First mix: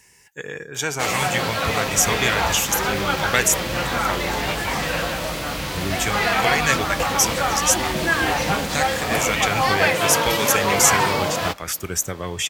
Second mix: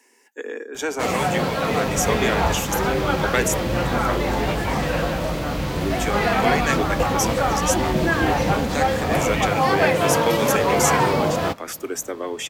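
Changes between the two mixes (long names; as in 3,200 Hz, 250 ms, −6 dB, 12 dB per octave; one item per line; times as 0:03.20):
speech: add Chebyshev high-pass filter 230 Hz, order 8
second sound: add high-frequency loss of the air 410 metres
master: add tilt shelving filter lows +6 dB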